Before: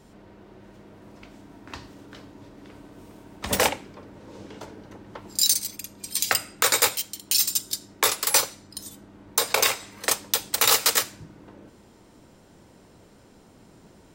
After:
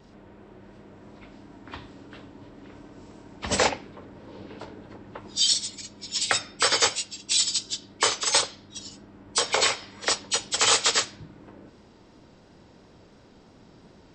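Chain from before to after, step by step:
hearing-aid frequency compression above 2,100 Hz 1.5 to 1
pitch vibrato 2.9 Hz 30 cents

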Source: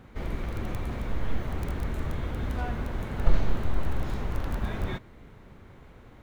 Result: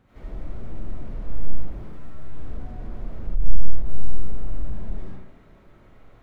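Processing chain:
0:01.73–0:02.36: stiff-string resonator 74 Hz, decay 0.29 s, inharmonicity 0.002
comb and all-pass reverb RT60 0.76 s, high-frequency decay 0.5×, pre-delay 50 ms, DRR −8.5 dB
slew-rate limiting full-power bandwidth 12 Hz
level −10.5 dB

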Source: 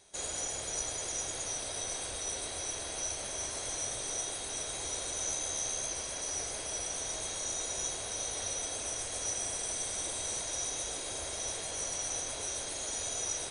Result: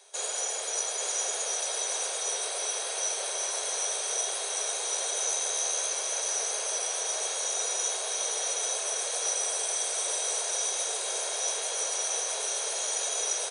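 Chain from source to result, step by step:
elliptic high-pass filter 420 Hz, stop band 50 dB
notch filter 2,000 Hz, Q 17
on a send: single-tap delay 850 ms −5 dB
on the sum: level +6 dB

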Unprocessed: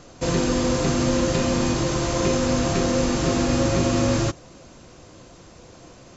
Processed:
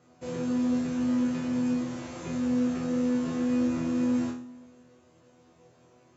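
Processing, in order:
high-pass filter 100 Hz 12 dB per octave
parametric band 5,100 Hz −7.5 dB 1.4 octaves
resonators tuned to a chord E2 fifth, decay 0.44 s
feedback echo with a low-pass in the loop 113 ms, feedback 64%, low-pass 3,400 Hz, level −18.5 dB

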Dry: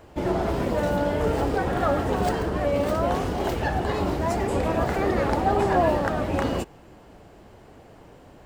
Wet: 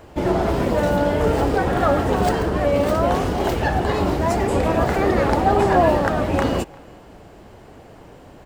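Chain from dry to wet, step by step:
far-end echo of a speakerphone 350 ms, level −24 dB
level +5 dB

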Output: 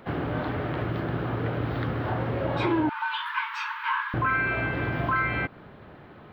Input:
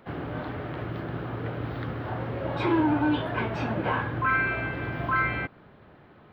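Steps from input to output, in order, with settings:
0:02.89–0:04.14: linear-phase brick-wall high-pass 870 Hz
downward compressor 2.5 to 1, threshold −30 dBFS, peak gain reduction 7.5 dB
level +5.5 dB

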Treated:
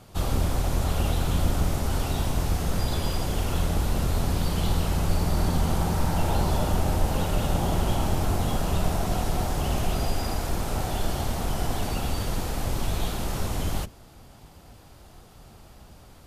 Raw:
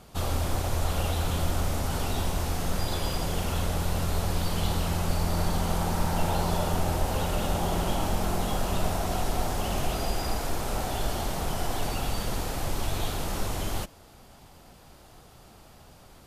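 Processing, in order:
sub-octave generator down 1 octave, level +3 dB

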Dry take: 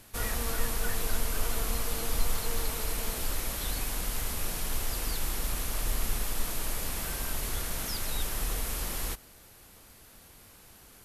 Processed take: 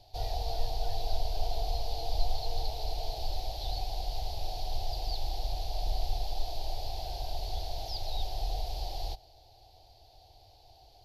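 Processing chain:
drawn EQ curve 110 Hz 0 dB, 220 Hz −26 dB, 320 Hz −8 dB, 520 Hz −6 dB, 750 Hz +11 dB, 1,200 Hz −27 dB, 1,900 Hz −21 dB, 4,500 Hz +4 dB, 8,500 Hz −28 dB, 13,000 Hz −19 dB

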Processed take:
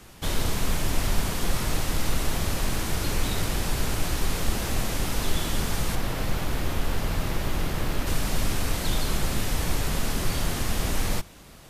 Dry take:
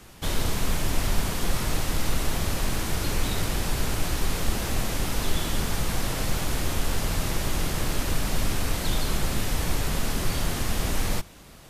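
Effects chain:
0:05.95–0:08.07: parametric band 8,200 Hz −7.5 dB 1.8 octaves

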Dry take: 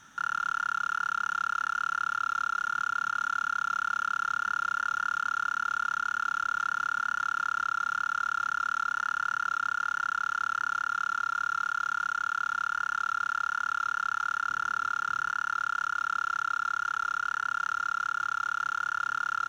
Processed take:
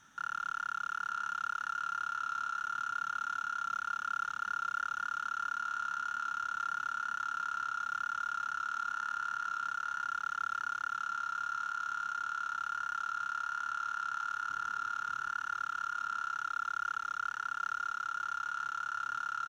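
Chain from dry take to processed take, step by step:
single-tap delay 926 ms −9 dB
level −7 dB

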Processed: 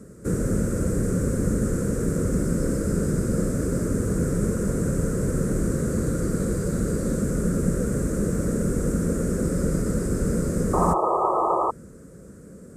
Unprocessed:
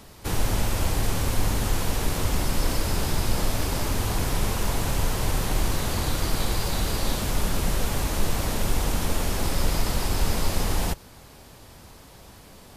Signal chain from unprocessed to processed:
drawn EQ curve 100 Hz 0 dB, 180 Hz +11 dB, 300 Hz +6 dB, 510 Hz +8 dB, 840 Hz −22 dB, 1,400 Hz 0 dB, 3,100 Hz −26 dB, 4,500 Hz −19 dB, 8,000 Hz +2 dB, 13,000 Hz −14 dB
sound drawn into the spectrogram noise, 0:10.73–0:11.71, 320–1,300 Hz −22 dBFS
high-pass filter 40 Hz

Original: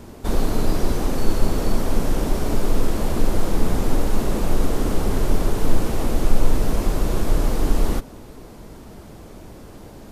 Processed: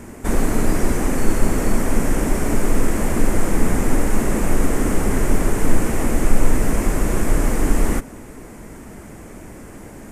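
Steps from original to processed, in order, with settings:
octave-band graphic EQ 250/2,000/4,000/8,000 Hz +4/+10/−11/+10 dB
level +1 dB

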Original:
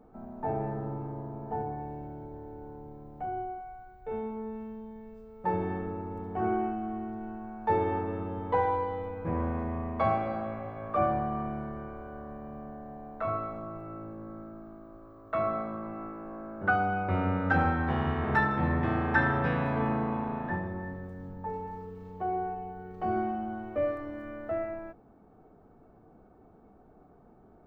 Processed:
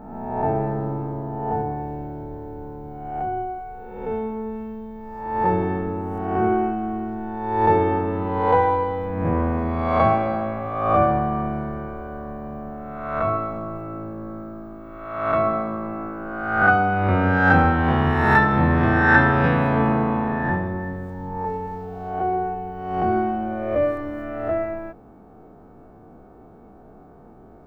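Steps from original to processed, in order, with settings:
peak hold with a rise ahead of every peak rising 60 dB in 1.04 s
level +8 dB

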